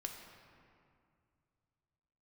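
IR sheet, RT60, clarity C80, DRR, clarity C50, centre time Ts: 2.3 s, 5.5 dB, 1.5 dB, 4.5 dB, 59 ms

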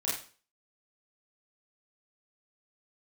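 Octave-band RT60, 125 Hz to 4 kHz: 0.40, 0.45, 0.40, 0.40, 0.40, 0.40 s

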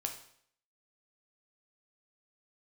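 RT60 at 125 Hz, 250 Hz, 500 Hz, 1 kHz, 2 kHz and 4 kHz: 0.60, 0.60, 0.65, 0.60, 0.60, 0.60 s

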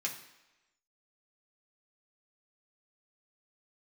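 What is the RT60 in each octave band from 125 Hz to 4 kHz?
0.75, 0.95, 1.0, 1.1, 1.1, 0.95 s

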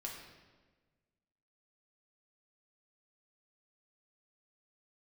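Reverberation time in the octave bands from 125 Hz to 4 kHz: 1.8, 1.7, 1.5, 1.2, 1.2, 1.0 s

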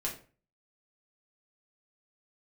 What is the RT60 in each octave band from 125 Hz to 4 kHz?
0.55, 0.45, 0.40, 0.35, 0.35, 0.30 s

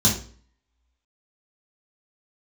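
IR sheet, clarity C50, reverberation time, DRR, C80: 7.0 dB, 0.45 s, -5.5 dB, 12.0 dB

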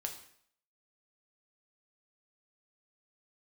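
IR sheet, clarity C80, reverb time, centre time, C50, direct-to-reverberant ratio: 12.0 dB, 0.65 s, 16 ms, 9.0 dB, 3.0 dB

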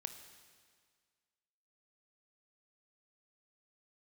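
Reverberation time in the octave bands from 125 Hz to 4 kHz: 1.8, 1.8, 1.8, 1.8, 1.8, 1.8 s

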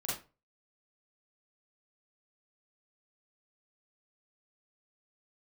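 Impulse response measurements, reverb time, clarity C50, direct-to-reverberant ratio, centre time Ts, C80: 0.30 s, 2.5 dB, -7.5 dB, 48 ms, 9.5 dB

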